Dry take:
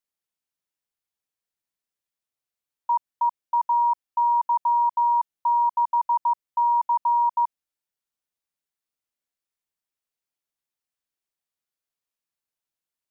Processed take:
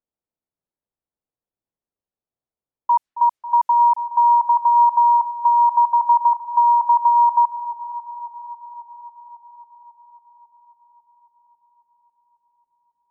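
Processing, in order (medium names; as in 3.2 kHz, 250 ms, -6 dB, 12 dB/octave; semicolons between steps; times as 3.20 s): echo whose repeats swap between lows and highs 273 ms, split 950 Hz, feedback 81%, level -10.5 dB; level-controlled noise filter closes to 730 Hz, open at -20.5 dBFS; trim +6 dB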